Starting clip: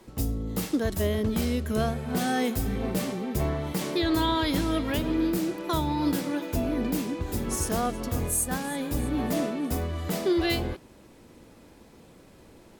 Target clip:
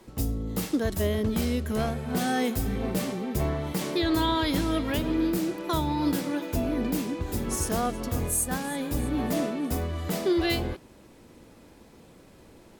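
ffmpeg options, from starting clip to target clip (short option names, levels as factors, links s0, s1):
-filter_complex "[0:a]asettb=1/sr,asplit=3[s0][s1][s2];[s0]atrim=end=1.704[s3];[s1]atrim=start=1.7:end=2.1,asetpts=PTS-STARTPTS,afade=t=in:d=0.004:c=qsin,afade=t=out:st=0.396:d=0.004:c=qsin,aeval=exprs='clip(val(0),-1,0.0562)':c=same[s4];[s2]atrim=start=2.096[s5];[s3][s4]acrossfade=d=0.004:c1=hsin:c2=qsin[s6];[s6][s5]acrossfade=d=0.004:c1=qsin:c2=hsin"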